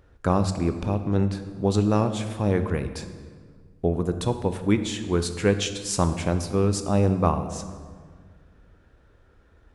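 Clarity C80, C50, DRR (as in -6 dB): 11.5 dB, 10.0 dB, 8.5 dB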